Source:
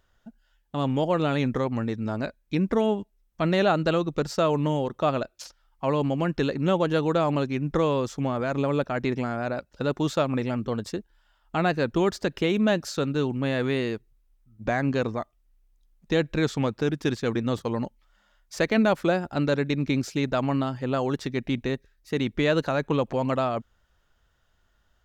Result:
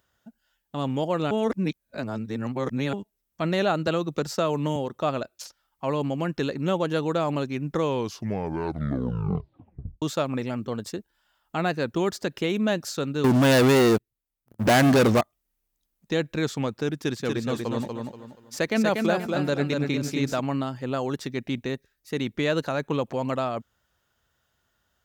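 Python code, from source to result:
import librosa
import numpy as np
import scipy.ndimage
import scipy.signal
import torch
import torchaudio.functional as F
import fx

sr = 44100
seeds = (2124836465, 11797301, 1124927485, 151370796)

y = fx.band_squash(x, sr, depth_pct=40, at=(3.87, 4.76))
y = fx.leveller(y, sr, passes=5, at=(13.24, 15.21))
y = fx.echo_feedback(y, sr, ms=239, feedback_pct=31, wet_db=-4, at=(16.96, 20.4))
y = fx.edit(y, sr, fx.reverse_span(start_s=1.31, length_s=1.62),
    fx.tape_stop(start_s=7.8, length_s=2.22), tone=tone)
y = scipy.signal.sosfilt(scipy.signal.butter(2, 83.0, 'highpass', fs=sr, output='sos'), y)
y = fx.high_shelf(y, sr, hz=7900.0, db=10.0)
y = y * 10.0 ** (-2.0 / 20.0)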